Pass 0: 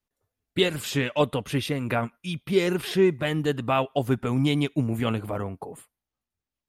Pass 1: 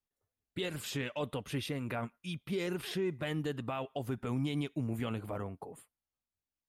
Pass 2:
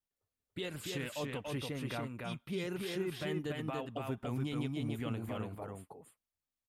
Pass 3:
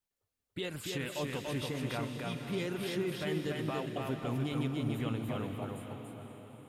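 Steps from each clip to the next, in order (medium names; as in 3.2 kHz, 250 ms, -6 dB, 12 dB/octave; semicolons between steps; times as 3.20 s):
peak limiter -17.5 dBFS, peak gain reduction 8.5 dB; trim -8.5 dB
delay 287 ms -3 dB; trim -3.5 dB
echo that smears into a reverb 520 ms, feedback 48%, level -8 dB; trim +2 dB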